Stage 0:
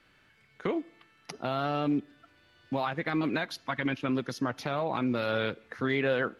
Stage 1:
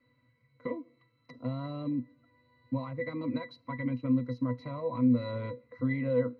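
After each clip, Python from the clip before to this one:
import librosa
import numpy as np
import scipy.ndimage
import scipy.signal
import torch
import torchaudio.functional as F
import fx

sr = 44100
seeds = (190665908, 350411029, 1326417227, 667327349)

y = fx.octave_resonator(x, sr, note='B', decay_s=0.13)
y = F.gain(torch.from_numpy(y), 7.5).numpy()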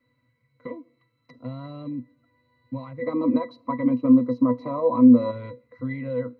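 y = fx.spec_box(x, sr, start_s=3.02, length_s=2.29, low_hz=200.0, high_hz=1300.0, gain_db=12)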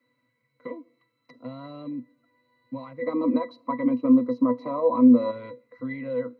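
y = scipy.signal.sosfilt(scipy.signal.butter(2, 220.0, 'highpass', fs=sr, output='sos'), x)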